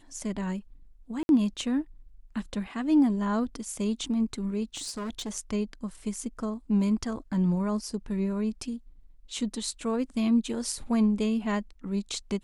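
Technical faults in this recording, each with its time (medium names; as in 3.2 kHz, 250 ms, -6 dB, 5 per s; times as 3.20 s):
1.23–1.29 s: dropout 61 ms
4.75–5.36 s: clipped -30.5 dBFS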